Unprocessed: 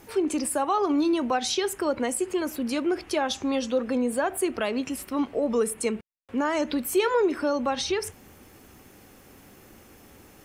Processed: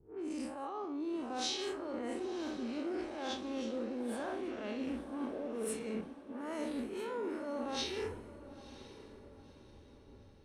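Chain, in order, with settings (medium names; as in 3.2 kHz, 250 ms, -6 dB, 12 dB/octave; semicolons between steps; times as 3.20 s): spectral blur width 145 ms; level-controlled noise filter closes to 310 Hz, open at -24 dBFS; reverse; compression 12:1, threshold -36 dBFS, peak gain reduction 14 dB; reverse; echo that smears into a reverb 975 ms, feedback 58%, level -9.5 dB; three bands expanded up and down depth 70%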